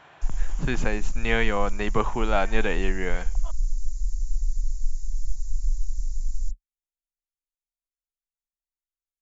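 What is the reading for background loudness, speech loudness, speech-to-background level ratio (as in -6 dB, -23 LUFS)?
-34.0 LUFS, -28.0 LUFS, 6.0 dB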